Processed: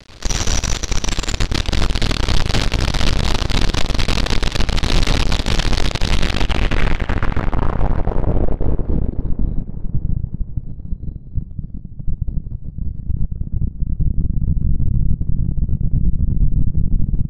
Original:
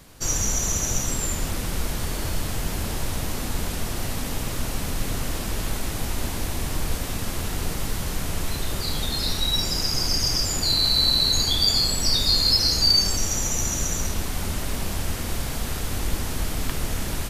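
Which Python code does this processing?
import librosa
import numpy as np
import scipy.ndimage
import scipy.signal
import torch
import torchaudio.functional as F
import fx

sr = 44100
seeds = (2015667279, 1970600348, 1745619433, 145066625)

p1 = fx.low_shelf(x, sr, hz=87.0, db=11.5)
p2 = fx.rider(p1, sr, range_db=3, speed_s=2.0)
p3 = fx.quant_companded(p2, sr, bits=2)
p4 = fx.filter_sweep_lowpass(p3, sr, from_hz=4200.0, to_hz=160.0, start_s=6.09, end_s=9.91, q=1.6)
p5 = p4 + fx.echo_filtered(p4, sr, ms=542, feedback_pct=44, hz=3600.0, wet_db=-15, dry=0)
y = p5 * 10.0 ** (-8.5 / 20.0)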